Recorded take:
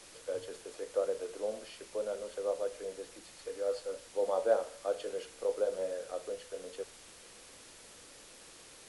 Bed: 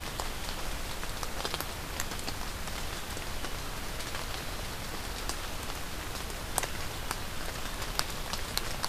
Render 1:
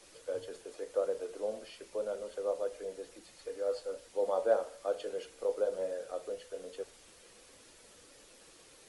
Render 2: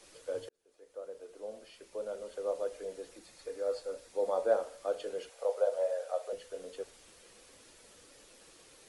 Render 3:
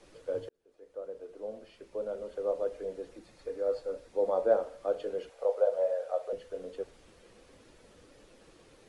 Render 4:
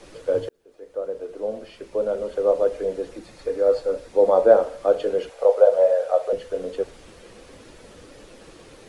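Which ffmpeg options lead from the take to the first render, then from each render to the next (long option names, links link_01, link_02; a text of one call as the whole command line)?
ffmpeg -i in.wav -af "afftdn=noise_reduction=6:noise_floor=-55" out.wav
ffmpeg -i in.wav -filter_complex "[0:a]asettb=1/sr,asplit=3[link_01][link_02][link_03];[link_01]atrim=end=3.154[link_04];[link_02]atrim=start=3.15:end=4.53,asetpts=PTS-STARTPTS,afade=type=in:duration=0.004:curve=qsin,afade=type=out:start_time=1.376:duration=0.004:curve=qsin,bandreject=frequency=3000:width=12[link_05];[link_03]atrim=start=4.526[link_06];[link_04][link_05]acrossfade=duration=0.004:curve1=hsin:curve2=qsin[link_07];[link_07][link_06]acrossfade=duration=0.004:curve1=qsin:curve2=hsin,asettb=1/sr,asplit=3[link_08][link_09][link_10];[link_08]atrim=end=5.294[link_11];[link_09]atrim=start=5.29:end=6.33,asetpts=PTS-STARTPTS,afade=type=in:duration=0.004:curve=qsin,afade=type=out:start_time=1.036:duration=0.004:curve=qsin,lowshelf=frequency=420:width_type=q:width=3:gain=-13.5[link_12];[link_10]atrim=start=6.326[link_13];[link_11][link_12]acrossfade=duration=0.004:curve1=hsin:curve2=qsin[link_14];[link_14][link_13]acrossfade=duration=0.004:curve1=qsin:curve2=hsin,asplit=2[link_15][link_16];[link_15]atrim=end=0.49,asetpts=PTS-STARTPTS,afade=type=out:start_time=0.486:duration=0.004:curve=hsin[link_17];[link_16]atrim=start=0.49,asetpts=PTS-STARTPTS,afade=type=in:duration=2.13[link_18];[link_17][link_18]concat=n=2:v=0:a=1" out.wav
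ffmpeg -i in.wav -af "lowpass=frequency=2600:poles=1,lowshelf=frequency=430:gain=8" out.wav
ffmpeg -i in.wav -af "volume=12dB,alimiter=limit=-2dB:level=0:latency=1" out.wav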